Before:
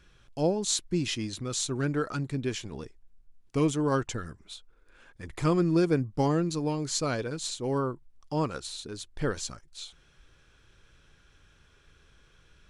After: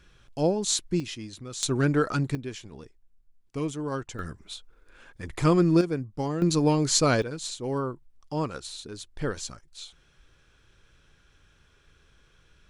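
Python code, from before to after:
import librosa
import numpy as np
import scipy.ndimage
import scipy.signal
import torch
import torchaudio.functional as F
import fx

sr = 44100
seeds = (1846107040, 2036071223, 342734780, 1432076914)

y = fx.gain(x, sr, db=fx.steps((0.0, 2.0), (1.0, -5.5), (1.63, 5.5), (2.35, -5.0), (4.19, 4.0), (5.81, -4.0), (6.42, 7.5), (7.22, -0.5)))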